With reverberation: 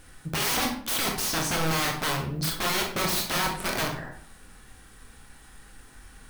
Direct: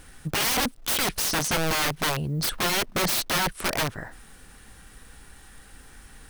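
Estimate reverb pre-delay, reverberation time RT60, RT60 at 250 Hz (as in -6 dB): 21 ms, 0.55 s, 0.60 s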